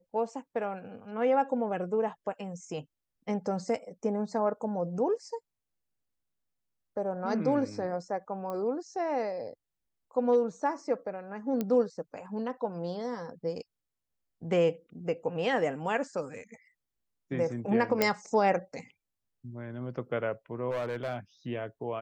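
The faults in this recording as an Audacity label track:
8.500000	8.500000	pop -25 dBFS
11.610000	11.610000	pop -18 dBFS
18.020000	18.020000	pop -9 dBFS
20.710000	21.160000	clipped -29 dBFS

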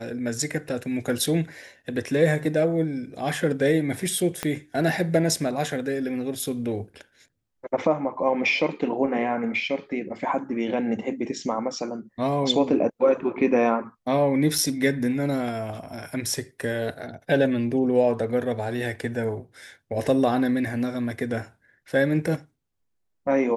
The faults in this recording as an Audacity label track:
4.430000	4.430000	pop -11 dBFS
14.580000	14.580000	gap 4.1 ms

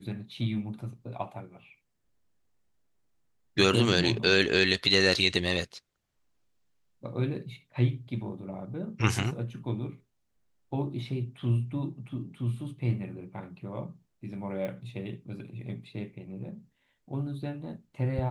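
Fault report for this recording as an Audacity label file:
14.650000	14.650000	pop -24 dBFS

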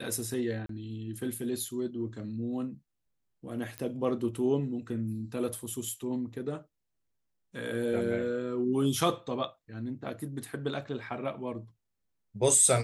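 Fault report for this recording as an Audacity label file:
0.660000	0.690000	gap 33 ms
3.780000	3.780000	pop -21 dBFS

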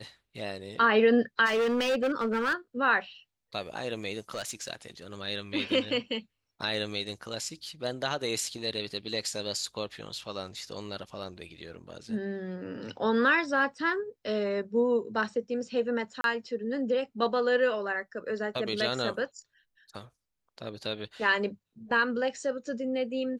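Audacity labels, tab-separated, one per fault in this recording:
1.450000	2.540000	clipped -23.5 dBFS
4.310000	4.710000	clipped -29.5 dBFS
16.210000	16.240000	gap 32 ms

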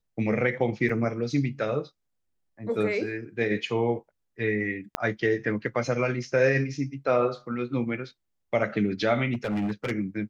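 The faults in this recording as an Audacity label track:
0.890000	0.890000	gap 4.5 ms
4.950000	4.950000	pop -10 dBFS
9.330000	9.920000	clipped -24.5 dBFS

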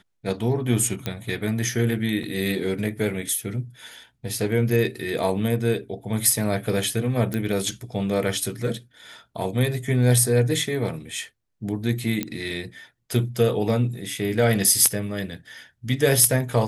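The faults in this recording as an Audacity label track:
1.060000	1.060000	pop -12 dBFS
2.230000	2.230000	gap 3.8 ms
7.340000	7.340000	pop -14 dBFS
12.230000	12.230000	pop -11 dBFS

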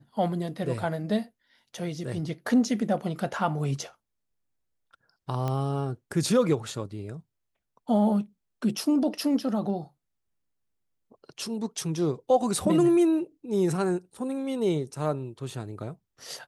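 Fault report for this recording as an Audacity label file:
5.480000	5.480000	pop -18 dBFS

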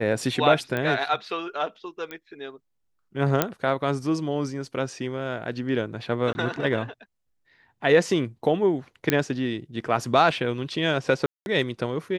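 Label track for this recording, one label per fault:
0.770000	0.770000	pop -15 dBFS
2.110000	2.110000	pop -21 dBFS
3.420000	3.420000	pop -4 dBFS
6.330000	6.350000	gap 20 ms
9.100000	9.100000	pop -5 dBFS
11.260000	11.460000	gap 0.201 s

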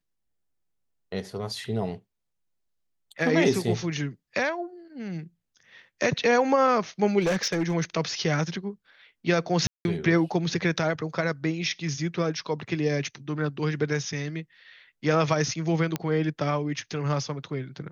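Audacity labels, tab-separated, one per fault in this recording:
7.200000	7.750000	clipped -20.5 dBFS
9.670000	9.850000	gap 0.181 s
15.960000	15.960000	pop -12 dBFS

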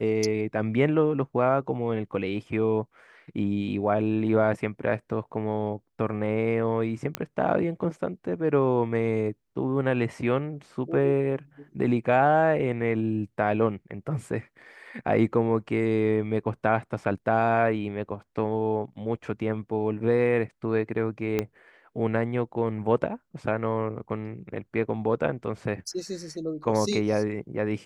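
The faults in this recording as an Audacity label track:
7.150000	7.150000	pop -11 dBFS
21.390000	21.390000	pop -12 dBFS

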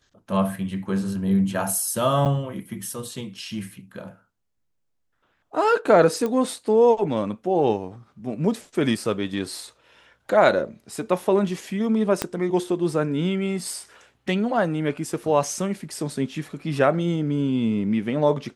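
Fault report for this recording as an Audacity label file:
2.250000	2.260000	gap 8.1 ms
6.260000	6.260000	pop -15 dBFS
12.220000	12.220000	pop -7 dBFS

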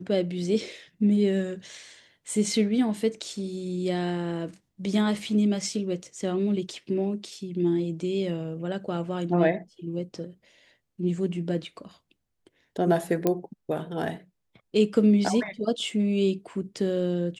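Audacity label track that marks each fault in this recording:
13.270000	13.270000	pop -10 dBFS

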